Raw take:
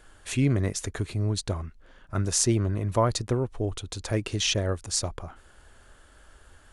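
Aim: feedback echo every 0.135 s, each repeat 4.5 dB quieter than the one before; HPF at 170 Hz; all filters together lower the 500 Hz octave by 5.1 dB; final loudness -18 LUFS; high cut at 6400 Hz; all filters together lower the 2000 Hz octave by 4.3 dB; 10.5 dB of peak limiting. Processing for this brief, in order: HPF 170 Hz; LPF 6400 Hz; bell 500 Hz -6.5 dB; bell 2000 Hz -5.5 dB; limiter -21 dBFS; feedback echo 0.135 s, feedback 60%, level -4.5 dB; gain +14.5 dB

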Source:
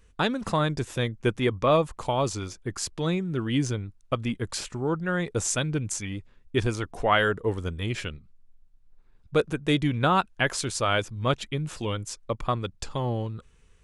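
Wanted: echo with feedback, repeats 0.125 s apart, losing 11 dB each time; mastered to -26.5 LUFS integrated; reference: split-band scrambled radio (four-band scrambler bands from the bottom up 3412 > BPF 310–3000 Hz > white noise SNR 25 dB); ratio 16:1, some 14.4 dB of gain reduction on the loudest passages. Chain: compressor 16:1, threshold -31 dBFS; feedback echo 0.125 s, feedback 28%, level -11 dB; four-band scrambler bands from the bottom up 3412; BPF 310–3000 Hz; white noise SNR 25 dB; gain +10.5 dB

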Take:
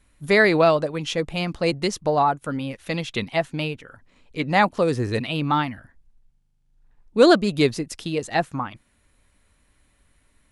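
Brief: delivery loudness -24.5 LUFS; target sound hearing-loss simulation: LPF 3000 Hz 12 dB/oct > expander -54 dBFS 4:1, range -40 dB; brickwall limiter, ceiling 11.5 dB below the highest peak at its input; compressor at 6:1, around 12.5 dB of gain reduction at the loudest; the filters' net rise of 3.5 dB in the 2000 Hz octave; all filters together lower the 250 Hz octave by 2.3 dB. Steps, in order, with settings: bell 250 Hz -3.5 dB; bell 2000 Hz +5 dB; compressor 6:1, threshold -23 dBFS; limiter -22 dBFS; LPF 3000 Hz 12 dB/oct; expander -54 dBFS 4:1, range -40 dB; gain +8.5 dB

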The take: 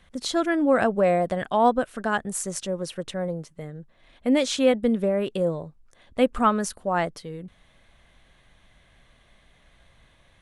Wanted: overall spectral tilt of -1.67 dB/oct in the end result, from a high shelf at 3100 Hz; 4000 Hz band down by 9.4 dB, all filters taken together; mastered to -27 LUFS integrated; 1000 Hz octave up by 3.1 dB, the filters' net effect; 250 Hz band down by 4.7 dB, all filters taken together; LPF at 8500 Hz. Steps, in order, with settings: LPF 8500 Hz; bell 250 Hz -6 dB; bell 1000 Hz +6 dB; high shelf 3100 Hz -8.5 dB; bell 4000 Hz -6 dB; gain -2.5 dB

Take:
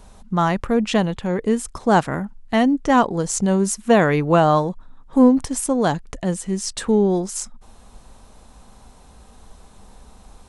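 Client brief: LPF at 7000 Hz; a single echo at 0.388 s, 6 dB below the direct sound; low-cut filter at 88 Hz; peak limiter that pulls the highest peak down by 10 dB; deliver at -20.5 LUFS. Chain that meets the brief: HPF 88 Hz; LPF 7000 Hz; limiter -13 dBFS; echo 0.388 s -6 dB; gain +2 dB

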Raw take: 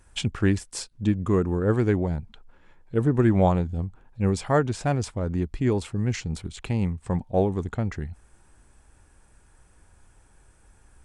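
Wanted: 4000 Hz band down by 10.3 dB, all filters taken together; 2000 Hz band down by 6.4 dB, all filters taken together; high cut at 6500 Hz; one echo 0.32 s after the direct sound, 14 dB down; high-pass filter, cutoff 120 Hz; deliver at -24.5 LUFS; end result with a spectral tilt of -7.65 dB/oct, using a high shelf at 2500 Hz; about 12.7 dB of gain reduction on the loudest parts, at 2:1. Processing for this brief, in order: HPF 120 Hz; LPF 6500 Hz; bell 2000 Hz -4 dB; high shelf 2500 Hz -8 dB; bell 4000 Hz -4.5 dB; compressor 2:1, threshold -41 dBFS; echo 0.32 s -14 dB; gain +14 dB

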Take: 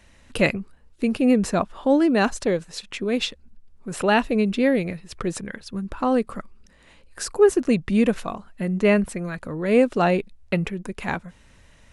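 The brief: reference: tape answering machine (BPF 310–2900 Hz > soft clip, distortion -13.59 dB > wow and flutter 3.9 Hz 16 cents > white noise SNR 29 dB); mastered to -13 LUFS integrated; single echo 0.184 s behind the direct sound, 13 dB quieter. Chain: BPF 310–2900 Hz; echo 0.184 s -13 dB; soft clip -15 dBFS; wow and flutter 3.9 Hz 16 cents; white noise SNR 29 dB; gain +14 dB

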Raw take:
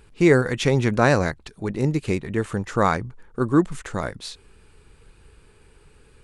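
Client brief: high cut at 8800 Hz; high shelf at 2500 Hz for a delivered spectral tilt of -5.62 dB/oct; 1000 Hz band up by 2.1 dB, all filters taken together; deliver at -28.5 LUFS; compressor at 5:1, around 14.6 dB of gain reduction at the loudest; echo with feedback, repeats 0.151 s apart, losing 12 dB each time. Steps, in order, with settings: LPF 8800 Hz; bell 1000 Hz +3.5 dB; high shelf 2500 Hz -4 dB; compressor 5:1, threshold -28 dBFS; feedback echo 0.151 s, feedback 25%, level -12 dB; gain +4.5 dB

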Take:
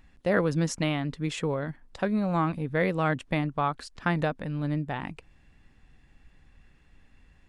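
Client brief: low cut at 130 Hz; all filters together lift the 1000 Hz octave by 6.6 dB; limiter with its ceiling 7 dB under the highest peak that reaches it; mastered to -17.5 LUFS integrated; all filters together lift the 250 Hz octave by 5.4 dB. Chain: HPF 130 Hz; bell 250 Hz +8.5 dB; bell 1000 Hz +8 dB; gain +8.5 dB; limiter -5 dBFS

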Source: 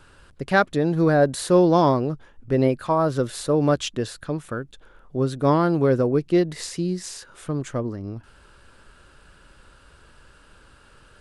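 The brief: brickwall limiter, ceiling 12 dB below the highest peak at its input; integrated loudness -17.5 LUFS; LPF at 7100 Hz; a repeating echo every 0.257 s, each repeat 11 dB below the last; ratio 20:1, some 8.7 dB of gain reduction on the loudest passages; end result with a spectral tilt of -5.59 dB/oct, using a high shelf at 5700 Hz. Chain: LPF 7100 Hz; high shelf 5700 Hz -5 dB; compressor 20:1, threshold -21 dBFS; limiter -25 dBFS; feedback echo 0.257 s, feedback 28%, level -11 dB; gain +17 dB

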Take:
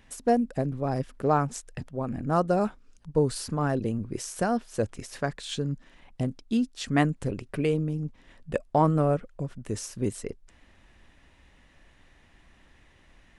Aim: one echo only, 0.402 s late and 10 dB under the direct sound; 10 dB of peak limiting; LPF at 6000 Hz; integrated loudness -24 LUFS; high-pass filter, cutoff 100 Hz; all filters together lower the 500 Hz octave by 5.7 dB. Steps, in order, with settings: HPF 100 Hz; LPF 6000 Hz; bell 500 Hz -7 dB; limiter -22.5 dBFS; echo 0.402 s -10 dB; gain +10 dB

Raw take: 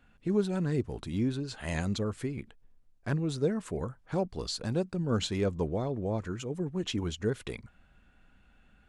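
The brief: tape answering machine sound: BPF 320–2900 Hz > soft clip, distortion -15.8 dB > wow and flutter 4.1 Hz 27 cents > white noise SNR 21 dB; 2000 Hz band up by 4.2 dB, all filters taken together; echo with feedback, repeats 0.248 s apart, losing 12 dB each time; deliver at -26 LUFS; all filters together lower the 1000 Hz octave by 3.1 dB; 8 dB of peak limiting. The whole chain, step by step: bell 1000 Hz -6.5 dB; bell 2000 Hz +8.5 dB; limiter -24.5 dBFS; BPF 320–2900 Hz; feedback echo 0.248 s, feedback 25%, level -12 dB; soft clip -31.5 dBFS; wow and flutter 4.1 Hz 27 cents; white noise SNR 21 dB; gain +15 dB

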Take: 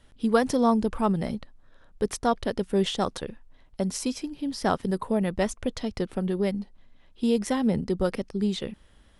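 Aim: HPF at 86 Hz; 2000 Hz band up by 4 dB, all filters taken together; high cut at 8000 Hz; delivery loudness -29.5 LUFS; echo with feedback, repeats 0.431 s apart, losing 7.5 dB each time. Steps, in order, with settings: HPF 86 Hz; LPF 8000 Hz; bell 2000 Hz +5 dB; feedback echo 0.431 s, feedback 42%, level -7.5 dB; gain -2.5 dB

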